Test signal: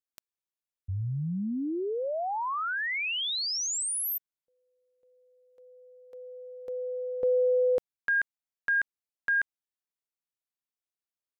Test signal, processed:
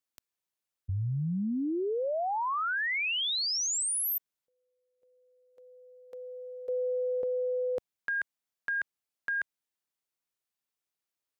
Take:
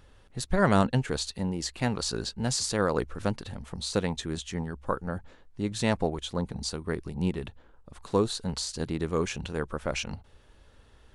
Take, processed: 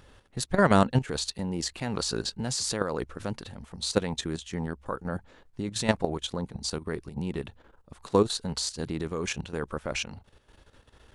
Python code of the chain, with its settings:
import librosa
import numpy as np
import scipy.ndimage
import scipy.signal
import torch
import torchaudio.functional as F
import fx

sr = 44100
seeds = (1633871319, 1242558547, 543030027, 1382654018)

y = fx.low_shelf(x, sr, hz=65.0, db=-7.5)
y = fx.level_steps(y, sr, step_db=12)
y = y * librosa.db_to_amplitude(5.5)